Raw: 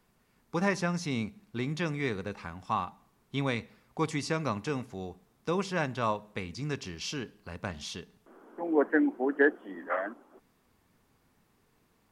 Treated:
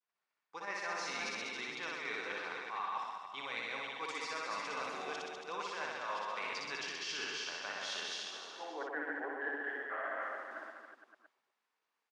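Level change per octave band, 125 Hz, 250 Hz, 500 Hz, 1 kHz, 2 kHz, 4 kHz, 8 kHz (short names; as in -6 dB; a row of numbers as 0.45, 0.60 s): -29.0, -19.5, -12.0, -4.0, -3.0, +0.5, -3.0 dB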